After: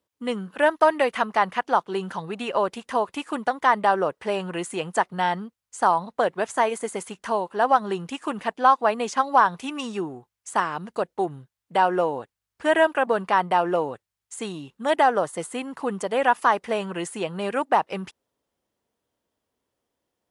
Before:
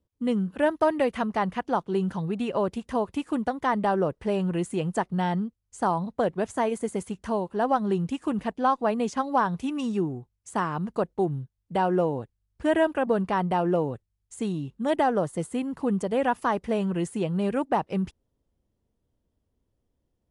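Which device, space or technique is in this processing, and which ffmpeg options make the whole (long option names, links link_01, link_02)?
filter by subtraction: -filter_complex "[0:a]asplit=2[link_01][link_02];[link_02]lowpass=1200,volume=-1[link_03];[link_01][link_03]amix=inputs=2:normalize=0,asettb=1/sr,asplit=3[link_04][link_05][link_06];[link_04]atrim=end=10.604[link_07];[link_05]atrim=start=10.6:end=11.13,asetpts=PTS-STARTPTS,afade=type=in:duration=0.004:curve=qsin,afade=type=out:start_time=0.526:duration=0.004:curve=qsin,equalizer=frequency=1100:width=1.3:gain=-6[link_08];[link_06]atrim=start=11.126[link_09];[link_07][link_08]acrossfade=duration=0.004:curve1=hsin:curve2=qsin[link_10];[link_10][link_09]acrossfade=duration=0.004:curve1=qsin:curve2=hsin,volume=6dB"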